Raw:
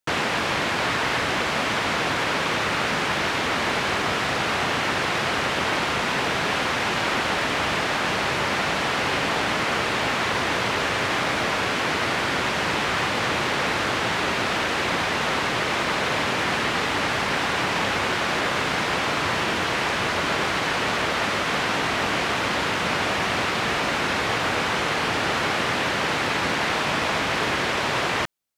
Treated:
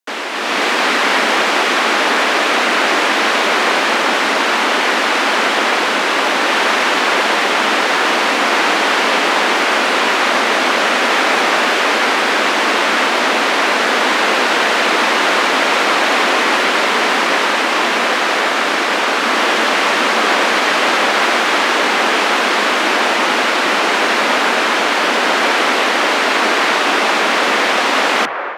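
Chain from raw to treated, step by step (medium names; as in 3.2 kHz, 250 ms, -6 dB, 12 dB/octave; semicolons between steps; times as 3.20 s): frequency shift +140 Hz; feedback echo behind a band-pass 975 ms, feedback 58%, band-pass 890 Hz, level -6 dB; level rider gain up to 11.5 dB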